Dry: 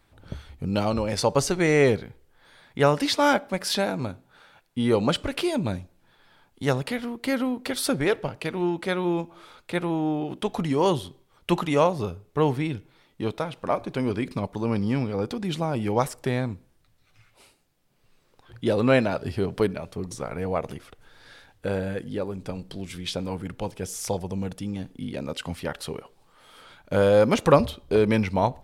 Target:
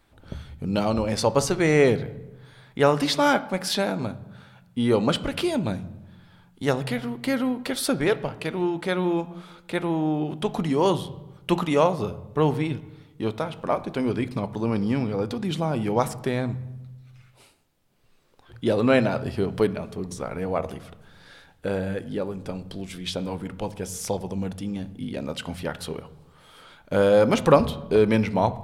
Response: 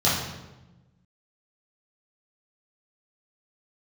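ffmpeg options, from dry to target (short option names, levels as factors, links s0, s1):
-filter_complex "[0:a]asplit=2[s0][s1];[1:a]atrim=start_sample=2205,lowpass=3500[s2];[s1][s2]afir=irnorm=-1:irlink=0,volume=0.0355[s3];[s0][s3]amix=inputs=2:normalize=0"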